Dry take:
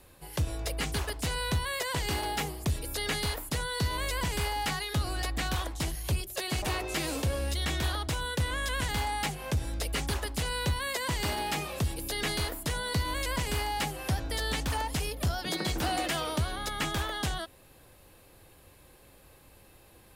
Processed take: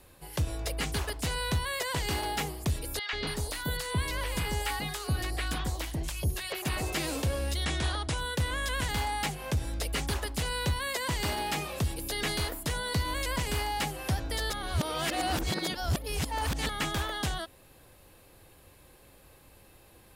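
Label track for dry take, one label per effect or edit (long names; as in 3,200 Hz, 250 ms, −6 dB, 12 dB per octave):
2.990000	6.940000	three-band delay without the direct sound mids, lows, highs 140/280 ms, splits 840/4,900 Hz
7.640000	8.180000	linear-phase brick-wall low-pass 11,000 Hz
14.500000	16.690000	reverse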